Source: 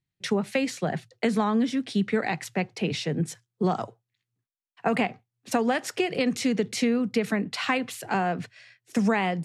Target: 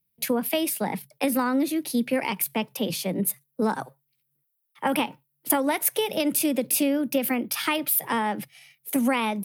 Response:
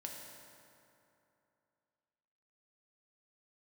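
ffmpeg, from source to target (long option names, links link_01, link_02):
-af "asetrate=52444,aresample=44100,atempo=0.840896,aexciter=amount=5.9:drive=9.5:freq=9900"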